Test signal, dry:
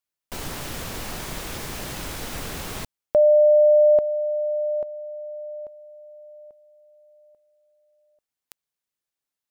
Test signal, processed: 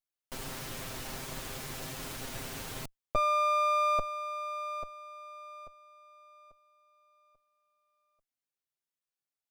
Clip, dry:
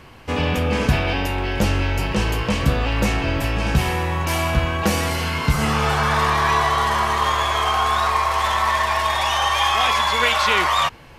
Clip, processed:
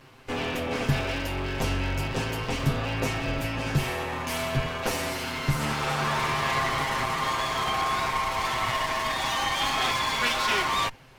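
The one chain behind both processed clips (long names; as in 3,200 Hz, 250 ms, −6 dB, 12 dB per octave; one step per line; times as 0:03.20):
lower of the sound and its delayed copy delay 7.6 ms
level −6 dB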